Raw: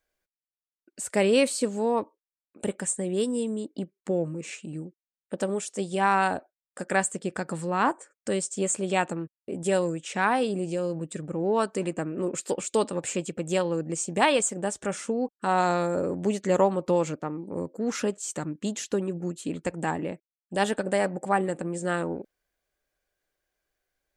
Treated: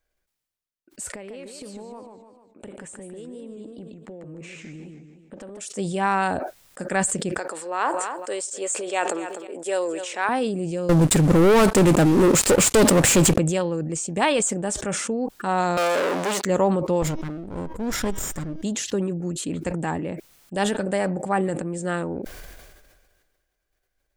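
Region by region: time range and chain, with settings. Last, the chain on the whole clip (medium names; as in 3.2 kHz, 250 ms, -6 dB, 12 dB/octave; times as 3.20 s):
1.09–5.61 s: tone controls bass -4 dB, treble -10 dB + compression 12:1, threshold -37 dBFS + modulated delay 150 ms, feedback 38%, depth 184 cents, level -7 dB
7.38–10.29 s: high-pass 390 Hz 24 dB/octave + feedback delay 251 ms, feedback 28%, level -21 dB
10.89–13.38 s: CVSD coder 64 kbps + waveshaping leveller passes 5
15.77–16.45 s: waveshaping leveller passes 5 + high-pass 570 Hz
17.02–18.64 s: comb filter that takes the minimum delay 0.57 ms + de-hum 318.5 Hz, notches 20
whole clip: bass shelf 110 Hz +10 dB; decay stretcher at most 35 dB/s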